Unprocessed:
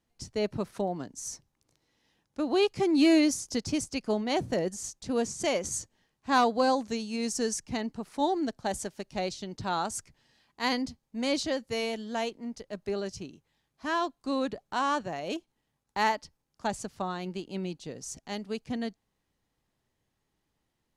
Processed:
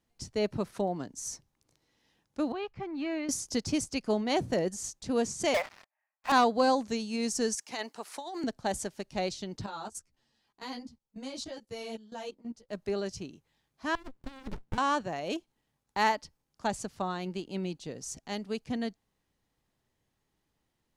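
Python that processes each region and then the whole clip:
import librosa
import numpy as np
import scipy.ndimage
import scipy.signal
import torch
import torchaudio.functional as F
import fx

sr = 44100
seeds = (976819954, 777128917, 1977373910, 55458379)

y = fx.chain(x, sr, fx.lowpass(hz=1500.0, slope=12),
    fx.peak_eq(hz=350.0, db=-13.5, octaves=2.4), at=(2.52, 3.29))
y = fx.chain(y, sr, fx.cheby1_bandpass(low_hz=600.0, high_hz=2600.0, order=5),
    fx.leveller(passes=5), at=(5.54, 6.32))
y = fx.chain(y, sr, fx.highpass(hz=610.0, slope=12),
    fx.high_shelf(hz=5400.0, db=5.5),
    fx.over_compress(threshold_db=-37.0, ratio=-1.0), at=(7.55, 8.44))
y = fx.chain(y, sr, fx.peak_eq(hz=2100.0, db=-4.5, octaves=0.72),
    fx.level_steps(step_db=18),
    fx.ensemble(), at=(9.66, 12.69))
y = fx.chain(y, sr, fx.highpass(hz=79.0, slope=12),
    fx.over_compress(threshold_db=-33.0, ratio=-0.5),
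    fx.running_max(window=65), at=(13.95, 14.78))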